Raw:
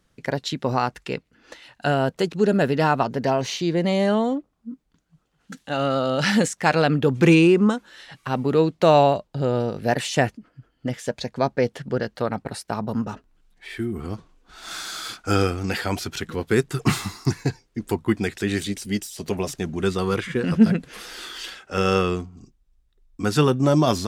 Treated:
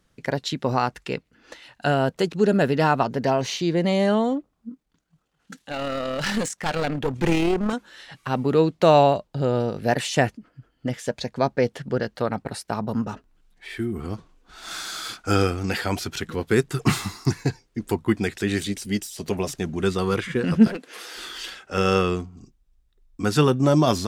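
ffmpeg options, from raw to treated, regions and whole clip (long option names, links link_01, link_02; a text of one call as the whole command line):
ffmpeg -i in.wav -filter_complex "[0:a]asettb=1/sr,asplit=3[link_01][link_02][link_03];[link_01]atrim=end=4.694[link_04];[link_02]atrim=start=4.69:end=7.73,asetpts=PTS-STARTPTS,afade=type=in:duration=0.004:curve=qsin,afade=type=out:start_time=3.036:duration=0.004:curve=qsin,tremolo=f=38:d=0.4,lowshelf=frequency=270:gain=-4,aeval=exprs='clip(val(0),-1,0.0562)':channel_layout=same[link_05];[link_03]atrim=start=7.726[link_06];[link_04][link_05]acrossfade=duration=0.004:curve1=hsin:curve2=qsin[link_07];[link_07][link_06]acrossfade=duration=0.004:curve1=qsin:curve2=hsin,asettb=1/sr,asplit=3[link_08][link_09][link_10];[link_08]atrim=end=20.674[link_11];[link_09]atrim=start=20.67:end=21.16,asetpts=PTS-STARTPTS,afade=type=in:duration=0.004:curve=qsin,afade=type=out:start_time=0.486:duration=0.004:curve=qsin,highpass=frequency=290:width=0.5412,highpass=frequency=290:width=1.3066,aeval=exprs='clip(val(0),-1,0.0355)':channel_layout=same[link_12];[link_10]atrim=start=21.156[link_13];[link_11][link_12]acrossfade=duration=0.004:curve1=hsin:curve2=qsin[link_14];[link_14][link_13]acrossfade=duration=0.004:curve1=qsin:curve2=hsin" out.wav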